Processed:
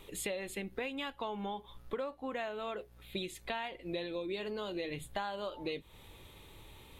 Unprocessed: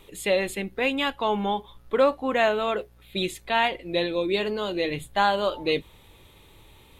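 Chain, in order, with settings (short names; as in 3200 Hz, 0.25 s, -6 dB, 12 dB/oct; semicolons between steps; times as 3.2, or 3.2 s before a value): compressor 12:1, threshold -33 dBFS, peak gain reduction 18 dB; gain -2 dB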